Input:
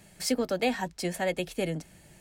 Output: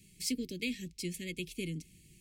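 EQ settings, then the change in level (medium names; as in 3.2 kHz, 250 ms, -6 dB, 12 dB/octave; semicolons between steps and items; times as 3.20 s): elliptic band-stop 430–2300 Hz, stop band 40 dB; peaking EQ 520 Hz -9 dB 0.87 oct; -3.5 dB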